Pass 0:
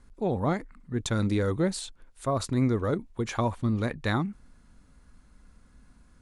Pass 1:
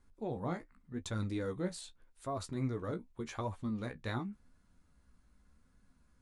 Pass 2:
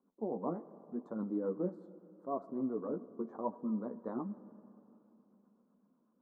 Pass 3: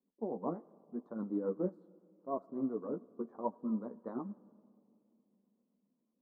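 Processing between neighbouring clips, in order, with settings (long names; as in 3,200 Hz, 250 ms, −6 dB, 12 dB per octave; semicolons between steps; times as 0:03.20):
flanger 0.86 Hz, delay 9.9 ms, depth 8.1 ms, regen +29%; level −7 dB
elliptic band-pass filter 200–1,100 Hz, stop band 40 dB; rotating-speaker cabinet horn 8 Hz; convolution reverb RT60 3.2 s, pre-delay 25 ms, DRR 16 dB; level +4 dB
low-pass that shuts in the quiet parts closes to 670 Hz, open at −34 dBFS; tape wow and flutter 27 cents; expander for the loud parts 1.5 to 1, over −49 dBFS; level +1.5 dB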